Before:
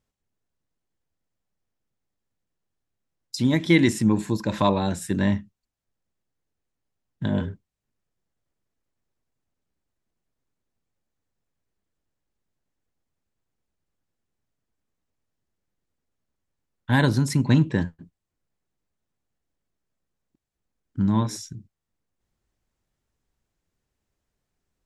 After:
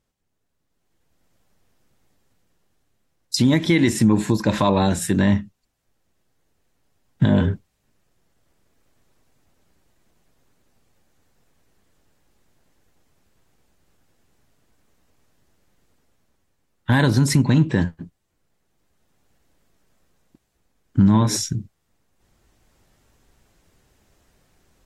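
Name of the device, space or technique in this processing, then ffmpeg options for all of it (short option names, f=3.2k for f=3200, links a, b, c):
low-bitrate web radio: -af "dynaudnorm=f=690:g=3:m=14dB,alimiter=limit=-11dB:level=0:latency=1:release=195,volume=4dB" -ar 44100 -c:a aac -b:a 48k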